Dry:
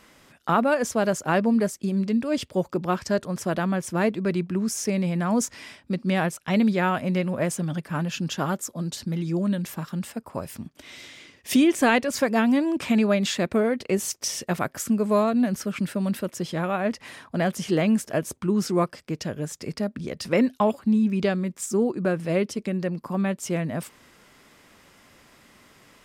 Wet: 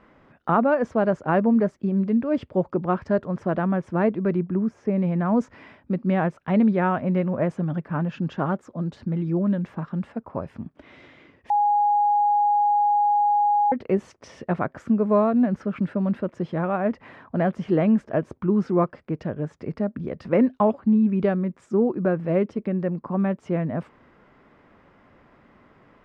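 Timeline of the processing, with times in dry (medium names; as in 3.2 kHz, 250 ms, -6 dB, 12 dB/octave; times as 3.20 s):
4.36–4.98 s: peaking EQ 10 kHz -11 dB 2.9 oct
11.50–13.72 s: bleep 826 Hz -18 dBFS
whole clip: low-pass 1.4 kHz 12 dB/octave; trim +2 dB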